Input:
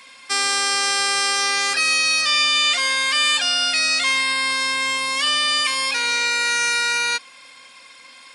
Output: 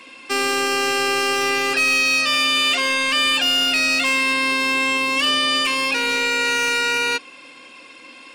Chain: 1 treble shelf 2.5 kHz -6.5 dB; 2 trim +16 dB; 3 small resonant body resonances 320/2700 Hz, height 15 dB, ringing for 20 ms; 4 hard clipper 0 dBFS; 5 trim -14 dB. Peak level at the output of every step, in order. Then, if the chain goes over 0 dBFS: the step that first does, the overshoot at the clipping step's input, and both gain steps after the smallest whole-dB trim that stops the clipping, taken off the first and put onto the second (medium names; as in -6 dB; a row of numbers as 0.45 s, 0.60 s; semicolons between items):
-10.5 dBFS, +5.5 dBFS, +8.5 dBFS, 0.0 dBFS, -14.0 dBFS; step 2, 8.5 dB; step 2 +7 dB, step 5 -5 dB